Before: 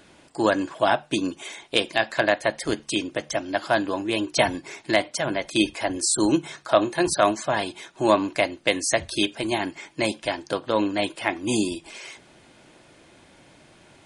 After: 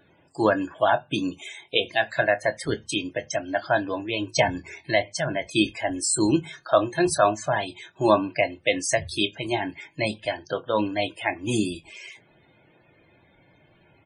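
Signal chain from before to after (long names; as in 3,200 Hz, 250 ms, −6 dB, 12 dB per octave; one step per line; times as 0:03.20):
on a send at −21.5 dB: convolution reverb RT60 0.30 s, pre-delay 3 ms
on the sum: spectral peaks only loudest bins 64
noise reduction from a noise print of the clip's start 6 dB
double-tracking delay 25 ms −13 dB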